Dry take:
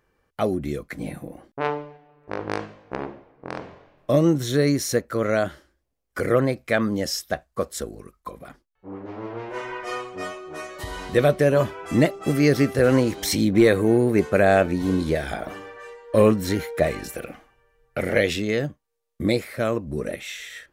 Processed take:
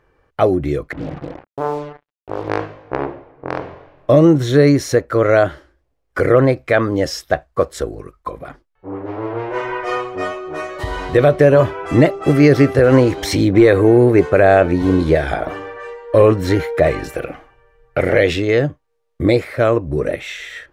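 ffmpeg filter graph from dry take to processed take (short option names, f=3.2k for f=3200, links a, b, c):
-filter_complex "[0:a]asettb=1/sr,asplit=3[a][b][c];[a]atrim=end=0.924[d];[b]atrim=start=0.92:end=2.5,asetpts=PTS-STARTPTS,afade=t=in:d=0.004:c=qsin,afade=t=out:st=1.576:d=0.004:c=qsin,lowpass=f=1.3k:w=0.5412,lowpass=f=1.3k:w=1.3066,acompressor=threshold=-33dB:ratio=1.5:attack=3.2:release=140:knee=1:detection=peak,acrusher=bits=6:mix=0:aa=0.5[e];[c]atrim=start=2.496[f];[d][e]acrossfade=d=0.004:c1=hsin:c2=qsin[g];[g][f]acrossfade=d=0.004:c1=qsin:c2=hsin,lowpass=f=1.9k:p=1,equalizer=f=210:t=o:w=0.31:g=-14.5,alimiter=level_in=11.5dB:limit=-1dB:release=50:level=0:latency=1,volume=-1dB"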